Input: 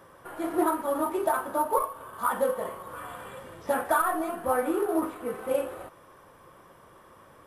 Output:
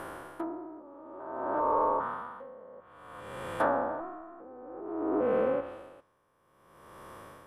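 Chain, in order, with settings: spectrogram pixelated in time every 400 ms; low-pass that closes with the level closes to 870 Hz, closed at -27.5 dBFS; logarithmic tremolo 0.56 Hz, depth 24 dB; trim +7.5 dB

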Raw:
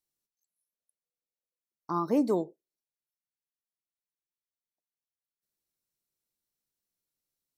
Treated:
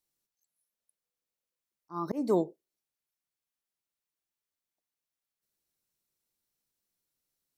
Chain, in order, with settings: slow attack 257 ms; trim +3 dB

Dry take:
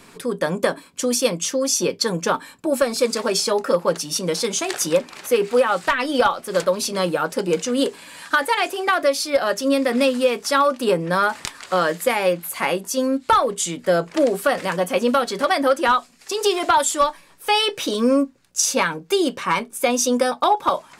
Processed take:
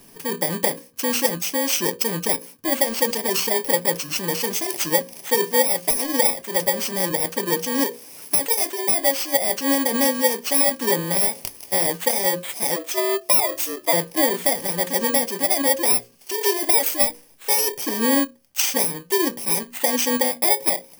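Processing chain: bit-reversed sample order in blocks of 32 samples; hum notches 60/120/180/240/300/360/420/480/540 Hz; 12.76–13.93 s: frequency shift +120 Hz; trim -1 dB

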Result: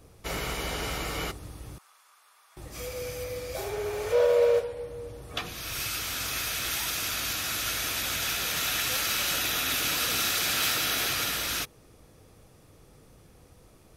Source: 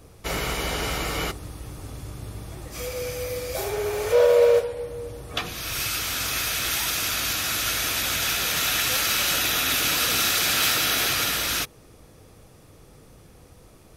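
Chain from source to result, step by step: 1.78–2.57 s: ladder high-pass 950 Hz, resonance 45%; 3.24–5.22 s: treble shelf 7.6 kHz -4.5 dB; trim -5 dB

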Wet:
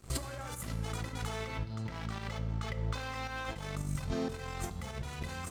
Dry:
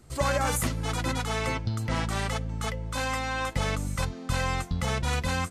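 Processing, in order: compressor with a negative ratio -37 dBFS, ratio -1; 1.44–3.56 s: Chebyshev low-pass 4.6 kHz, order 2; crossover distortion -50 dBFS; volume shaper 110 bpm, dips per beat 1, -9 dB, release 109 ms; reverberation RT60 1.1 s, pre-delay 3 ms, DRR 8.5 dB

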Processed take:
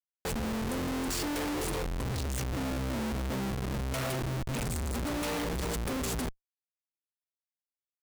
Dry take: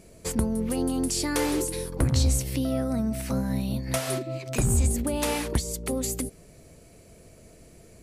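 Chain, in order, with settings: flutter echo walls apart 7.7 m, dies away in 0.28 s; Schmitt trigger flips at -31.5 dBFS; trim -5.5 dB

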